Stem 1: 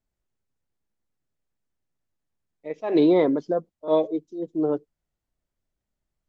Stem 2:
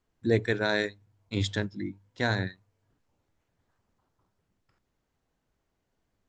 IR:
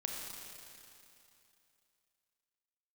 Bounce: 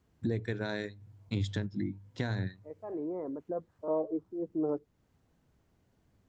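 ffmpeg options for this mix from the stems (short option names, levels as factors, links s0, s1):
-filter_complex "[0:a]lowpass=f=1400:w=0.5412,lowpass=f=1400:w=1.3066,alimiter=limit=0.2:level=0:latency=1,volume=0.891,afade=t=in:st=3.45:d=0.26:silence=0.266073[s0];[1:a]acompressor=threshold=0.02:ratio=3,highpass=72,lowshelf=f=260:g=12,volume=1.41[s1];[s0][s1]amix=inputs=2:normalize=0,acompressor=threshold=0.01:ratio=1.5"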